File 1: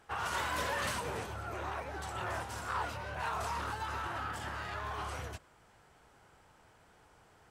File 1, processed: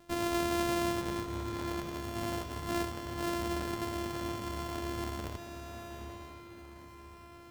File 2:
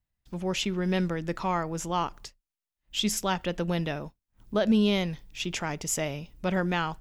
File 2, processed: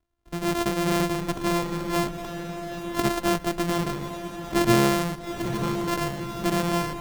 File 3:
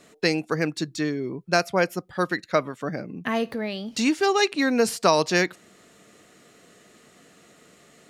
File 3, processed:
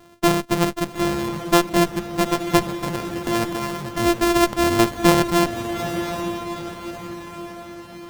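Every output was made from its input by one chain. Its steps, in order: sorted samples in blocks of 128 samples; echo that smears into a reverb 872 ms, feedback 48%, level -7 dB; sliding maximum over 17 samples; trim +4 dB

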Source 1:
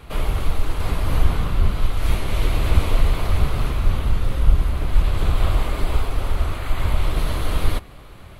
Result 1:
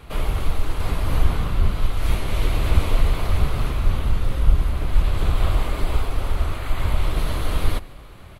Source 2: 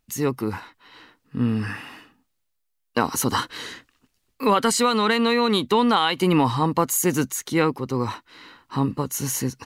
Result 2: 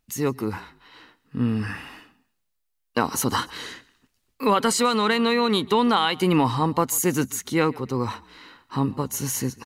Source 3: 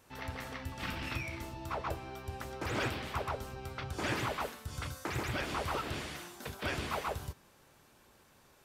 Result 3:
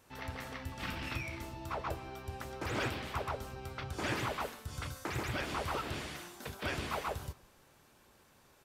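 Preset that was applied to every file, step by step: frequency-shifting echo 142 ms, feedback 35%, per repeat -31 Hz, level -23 dB; trim -1 dB

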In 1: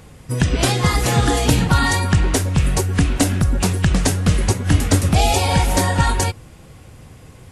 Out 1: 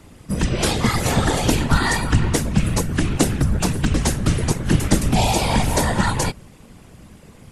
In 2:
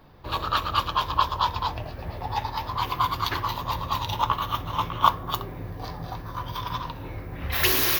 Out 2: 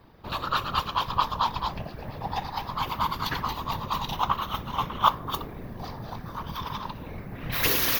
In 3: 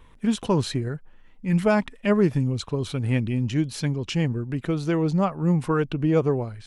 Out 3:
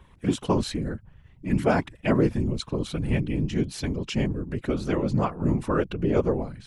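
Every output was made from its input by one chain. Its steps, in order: whisper effect; trim -2 dB

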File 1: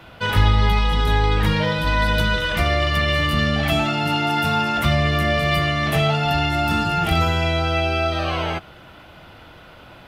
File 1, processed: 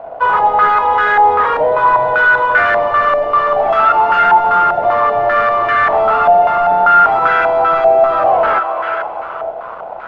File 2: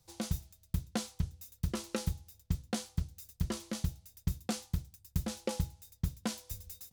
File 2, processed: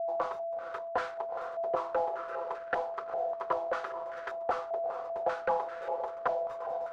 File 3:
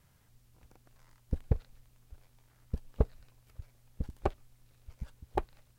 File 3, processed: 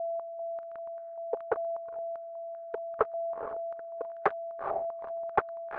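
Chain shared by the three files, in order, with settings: steep high-pass 410 Hz 48 dB/octave; on a send: echo that smears into a reverb 450 ms, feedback 44%, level -13 dB; on the sum: waveshaping leveller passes 5; whistle 670 Hz -37 dBFS; step-sequenced low-pass 5.1 Hz 720–1500 Hz; trim -4.5 dB

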